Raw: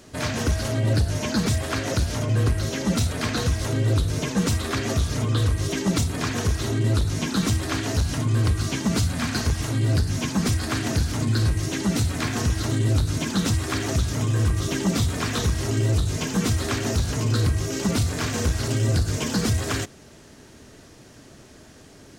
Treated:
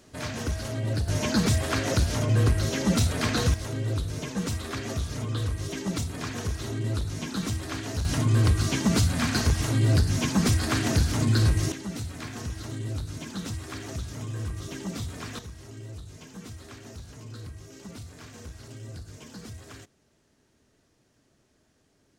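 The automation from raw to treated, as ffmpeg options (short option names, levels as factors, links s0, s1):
-af "asetnsamples=n=441:p=0,asendcmd='1.08 volume volume -0.5dB;3.54 volume volume -7.5dB;8.05 volume volume 0dB;11.72 volume volume -11.5dB;15.39 volume volume -19.5dB',volume=0.447"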